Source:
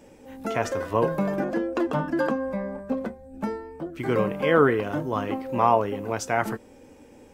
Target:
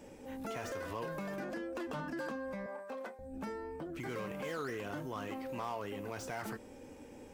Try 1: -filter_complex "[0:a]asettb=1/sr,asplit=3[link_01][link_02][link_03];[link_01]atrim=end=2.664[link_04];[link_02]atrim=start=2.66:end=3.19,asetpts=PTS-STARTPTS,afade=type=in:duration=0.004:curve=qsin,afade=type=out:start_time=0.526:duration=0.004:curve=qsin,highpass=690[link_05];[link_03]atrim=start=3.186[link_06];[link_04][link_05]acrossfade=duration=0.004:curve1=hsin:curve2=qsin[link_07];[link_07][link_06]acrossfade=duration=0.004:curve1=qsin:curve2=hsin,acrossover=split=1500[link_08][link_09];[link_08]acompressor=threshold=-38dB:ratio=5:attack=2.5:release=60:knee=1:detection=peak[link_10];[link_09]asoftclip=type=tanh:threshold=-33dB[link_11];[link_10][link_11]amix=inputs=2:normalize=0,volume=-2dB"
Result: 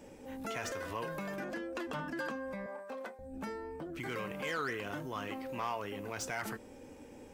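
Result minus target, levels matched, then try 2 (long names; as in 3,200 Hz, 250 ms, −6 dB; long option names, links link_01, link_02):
soft clipping: distortion −7 dB
-filter_complex "[0:a]asettb=1/sr,asplit=3[link_01][link_02][link_03];[link_01]atrim=end=2.664[link_04];[link_02]atrim=start=2.66:end=3.19,asetpts=PTS-STARTPTS,afade=type=in:duration=0.004:curve=qsin,afade=type=out:start_time=0.526:duration=0.004:curve=qsin,highpass=690[link_05];[link_03]atrim=start=3.186[link_06];[link_04][link_05]acrossfade=duration=0.004:curve1=hsin:curve2=qsin[link_07];[link_07][link_06]acrossfade=duration=0.004:curve1=qsin:curve2=hsin,acrossover=split=1500[link_08][link_09];[link_08]acompressor=threshold=-38dB:ratio=5:attack=2.5:release=60:knee=1:detection=peak[link_10];[link_09]asoftclip=type=tanh:threshold=-44.5dB[link_11];[link_10][link_11]amix=inputs=2:normalize=0,volume=-2dB"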